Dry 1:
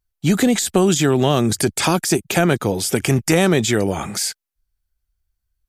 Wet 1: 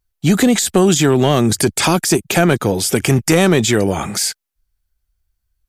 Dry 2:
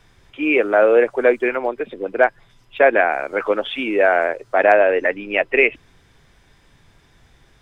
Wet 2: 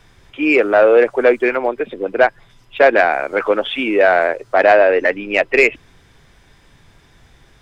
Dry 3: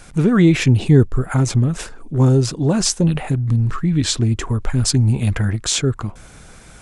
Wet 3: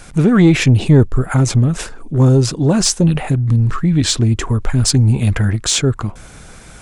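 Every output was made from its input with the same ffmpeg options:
ffmpeg -i in.wav -af "acontrast=26,volume=-1dB" out.wav

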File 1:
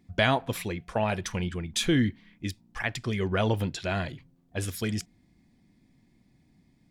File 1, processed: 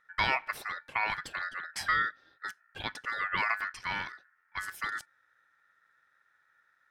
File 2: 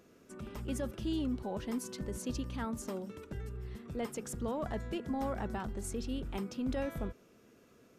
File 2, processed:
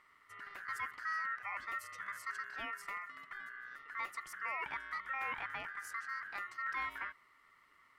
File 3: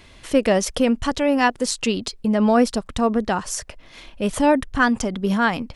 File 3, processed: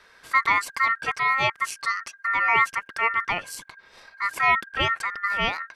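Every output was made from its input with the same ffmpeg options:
ffmpeg -i in.wav -af "equalizer=frequency=500:width=0.59:gain=6.5,bandreject=frequency=5300:width=5.2,aeval=exprs='val(0)*sin(2*PI*1600*n/s)':channel_layout=same,volume=-6dB" out.wav

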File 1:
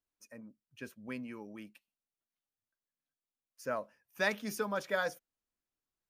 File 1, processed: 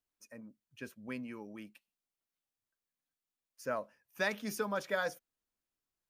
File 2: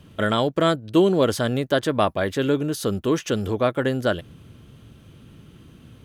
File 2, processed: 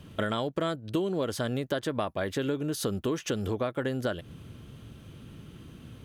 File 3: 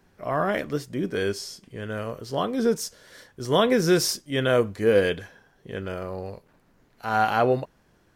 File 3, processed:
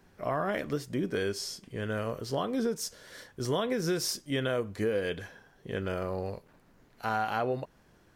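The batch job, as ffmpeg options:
ffmpeg -i in.wav -af "acompressor=threshold=-27dB:ratio=6" out.wav

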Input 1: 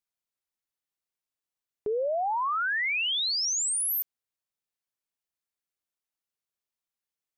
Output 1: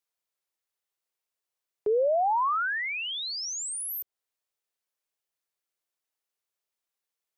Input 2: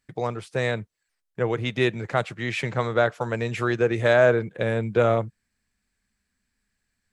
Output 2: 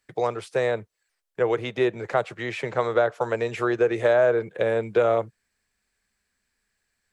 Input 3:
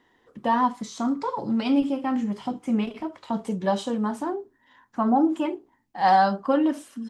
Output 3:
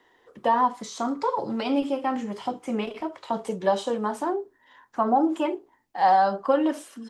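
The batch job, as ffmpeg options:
ffmpeg -i in.wav -filter_complex "[0:a]lowshelf=frequency=320:width_type=q:width=1.5:gain=-6.5,acrossover=split=140|1300[link_01][link_02][link_03];[link_01]acompressor=threshold=-46dB:ratio=4[link_04];[link_02]acompressor=threshold=-19dB:ratio=4[link_05];[link_03]acompressor=threshold=-37dB:ratio=4[link_06];[link_04][link_05][link_06]amix=inputs=3:normalize=0,volume=2.5dB" out.wav

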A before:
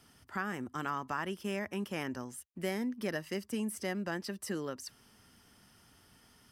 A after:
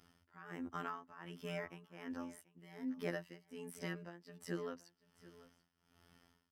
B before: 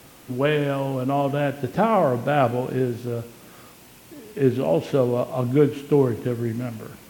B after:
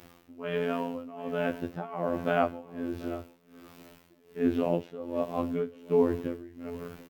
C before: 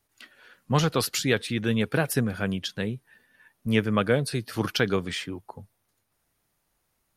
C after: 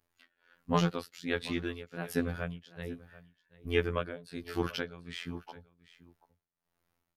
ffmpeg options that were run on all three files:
ffmpeg -i in.wav -af "equalizer=frequency=9600:width=0.59:gain=-9,afftfilt=real='hypot(re,im)*cos(PI*b)':imag='0':win_size=2048:overlap=0.75,tremolo=f=1.3:d=0.88,aecho=1:1:736:0.112" out.wav

